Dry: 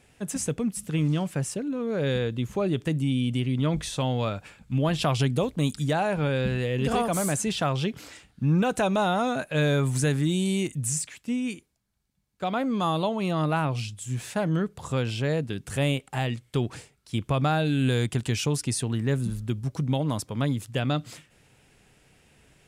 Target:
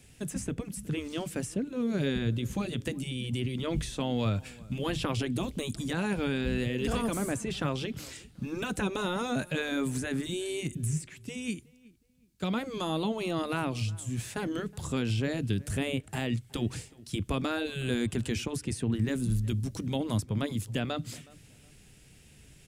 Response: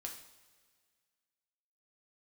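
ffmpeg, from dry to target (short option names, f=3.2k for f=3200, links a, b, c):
-filter_complex "[0:a]afftfilt=real='re*lt(hypot(re,im),0.355)':imag='im*lt(hypot(re,im),0.355)':win_size=1024:overlap=0.75,equalizer=f=910:t=o:w=2.8:g=-13,acrossover=split=100|1500|2100[a][b][c][d];[d]acompressor=threshold=-48dB:ratio=6[e];[a][b][c][e]amix=inputs=4:normalize=0,asplit=2[f][g];[g]adelay=368,lowpass=f=2k:p=1,volume=-22dB,asplit=2[h][i];[i]adelay=368,lowpass=f=2k:p=1,volume=0.31[j];[f][h][j]amix=inputs=3:normalize=0,volume=6.5dB"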